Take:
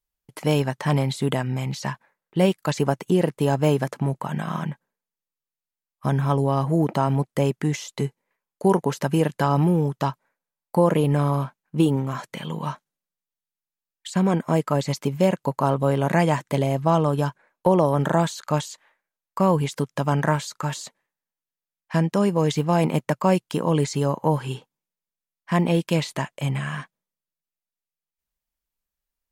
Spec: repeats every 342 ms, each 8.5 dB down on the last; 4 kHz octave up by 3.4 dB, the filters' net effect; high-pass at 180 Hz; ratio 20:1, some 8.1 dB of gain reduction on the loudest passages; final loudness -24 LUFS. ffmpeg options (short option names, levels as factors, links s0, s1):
-af "highpass=180,equalizer=f=4000:t=o:g=4.5,acompressor=threshold=0.0891:ratio=20,aecho=1:1:342|684|1026|1368:0.376|0.143|0.0543|0.0206,volume=1.68"